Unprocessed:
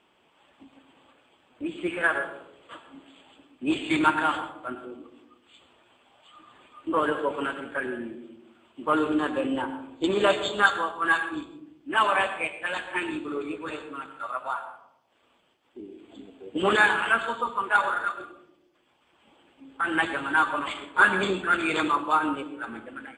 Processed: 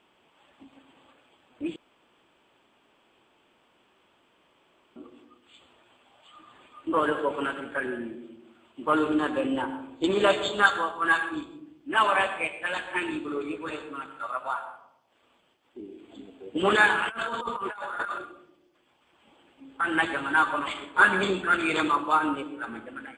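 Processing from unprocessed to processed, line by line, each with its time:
0:01.76–0:04.96: fill with room tone
0:17.09–0:18.18: compressor whose output falls as the input rises −34 dBFS

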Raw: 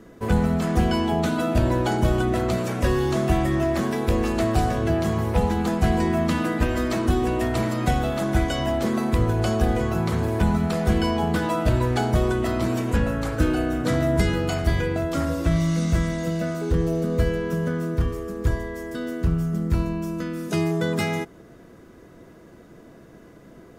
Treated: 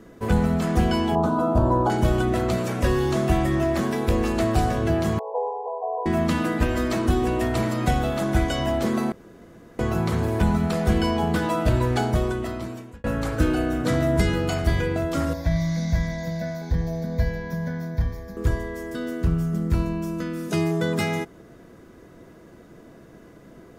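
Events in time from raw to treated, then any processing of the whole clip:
0:01.15–0:01.90: high shelf with overshoot 1,500 Hz −11.5 dB, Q 3
0:05.19–0:06.06: linear-phase brick-wall band-pass 400–1,100 Hz
0:09.12–0:09.79: fill with room tone
0:11.98–0:13.04: fade out
0:15.33–0:18.37: phaser with its sweep stopped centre 1,900 Hz, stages 8

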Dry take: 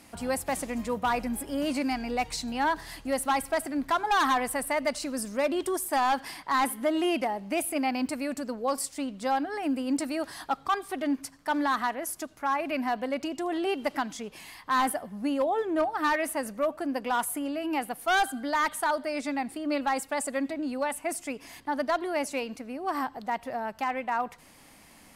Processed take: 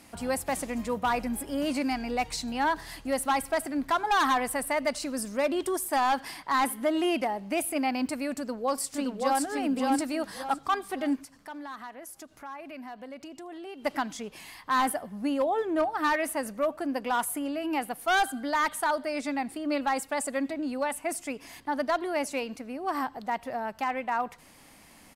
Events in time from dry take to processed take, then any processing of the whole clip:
0:08.35–0:09.44: delay throw 570 ms, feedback 35%, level −2 dB
0:11.23–0:13.85: downward compressor 2 to 1, threshold −49 dBFS

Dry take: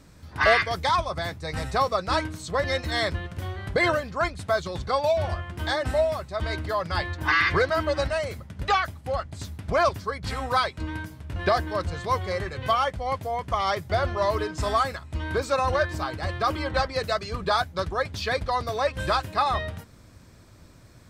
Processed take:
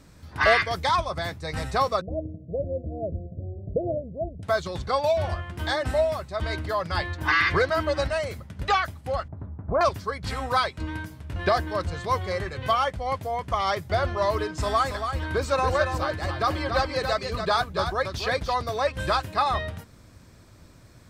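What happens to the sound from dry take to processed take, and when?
0:02.01–0:04.43: Chebyshev low-pass with heavy ripple 680 Hz, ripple 3 dB
0:09.28–0:09.81: low-pass filter 1,200 Hz 24 dB per octave
0:14.51–0:18.54: single-tap delay 281 ms −7 dB

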